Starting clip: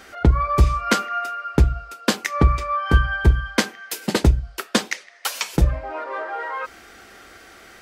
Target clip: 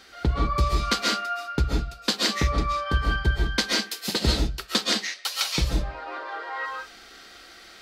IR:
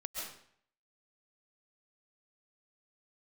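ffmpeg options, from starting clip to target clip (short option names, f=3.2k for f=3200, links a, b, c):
-filter_complex "[0:a]equalizer=f=4.2k:t=o:w=0.85:g=11.5,bandreject=f=620:w=12[a];[1:a]atrim=start_sample=2205,afade=t=out:st=0.26:d=0.01,atrim=end_sample=11907[b];[a][b]afir=irnorm=-1:irlink=0,volume=-4.5dB"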